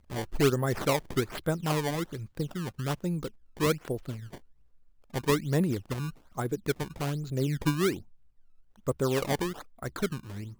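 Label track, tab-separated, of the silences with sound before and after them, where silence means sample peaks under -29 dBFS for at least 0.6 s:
4.110000	5.160000	silence
7.940000	8.880000	silence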